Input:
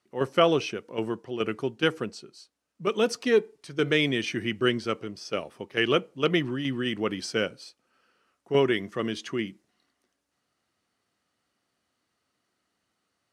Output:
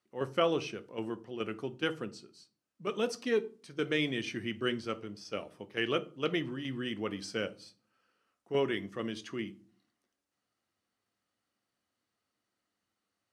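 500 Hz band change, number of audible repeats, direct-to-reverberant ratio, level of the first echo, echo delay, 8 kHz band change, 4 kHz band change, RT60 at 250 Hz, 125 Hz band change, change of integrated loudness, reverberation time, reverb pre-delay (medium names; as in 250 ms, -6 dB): -7.5 dB, no echo, 11.0 dB, no echo, no echo, -8.0 dB, -7.5 dB, 0.65 s, -8.0 dB, -7.5 dB, 0.40 s, 4 ms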